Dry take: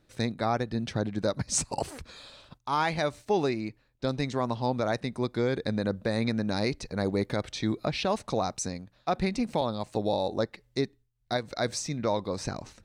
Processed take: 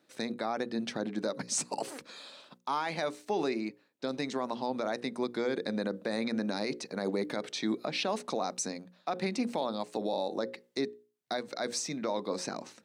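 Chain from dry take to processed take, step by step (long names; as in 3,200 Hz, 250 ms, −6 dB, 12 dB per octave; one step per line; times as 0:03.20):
high-pass filter 200 Hz 24 dB per octave
mains-hum notches 60/120/180/240/300/360/420/480/540 Hz
brickwall limiter −21.5 dBFS, peak gain reduction 8 dB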